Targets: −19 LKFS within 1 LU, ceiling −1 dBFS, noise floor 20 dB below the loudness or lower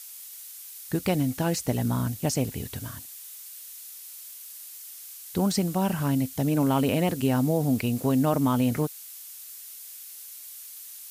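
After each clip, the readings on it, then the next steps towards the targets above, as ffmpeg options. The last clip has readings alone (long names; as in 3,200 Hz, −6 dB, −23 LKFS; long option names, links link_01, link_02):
background noise floor −43 dBFS; target noise floor −46 dBFS; integrated loudness −26.0 LKFS; sample peak −10.5 dBFS; target loudness −19.0 LKFS
→ -af "afftdn=noise_reduction=6:noise_floor=-43"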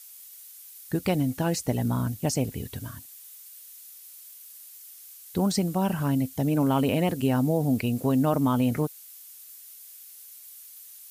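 background noise floor −47 dBFS; integrated loudness −26.0 LKFS; sample peak −10.5 dBFS; target loudness −19.0 LKFS
→ -af "volume=7dB"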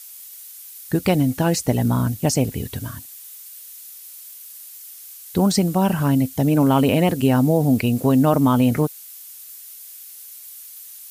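integrated loudness −19.0 LKFS; sample peak −3.5 dBFS; background noise floor −40 dBFS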